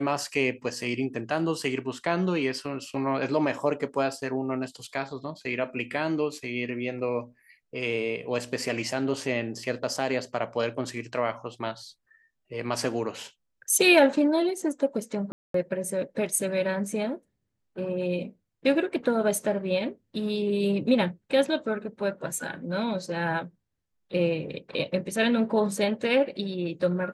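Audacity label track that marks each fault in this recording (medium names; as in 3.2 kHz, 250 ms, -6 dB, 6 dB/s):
15.320000	15.540000	dropout 223 ms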